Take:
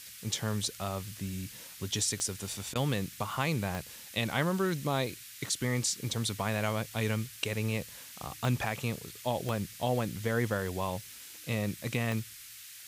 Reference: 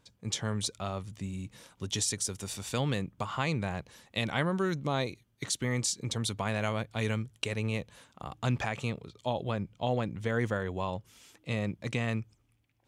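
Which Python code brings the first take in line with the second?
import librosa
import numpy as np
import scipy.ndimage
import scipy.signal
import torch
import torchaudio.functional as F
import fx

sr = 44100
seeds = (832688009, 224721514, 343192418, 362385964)

y = fx.fix_declick_ar(x, sr, threshold=10.0)
y = fx.fix_interpolate(y, sr, at_s=(2.74,), length_ms=13.0)
y = fx.noise_reduce(y, sr, print_start_s=12.35, print_end_s=12.85, reduce_db=16.0)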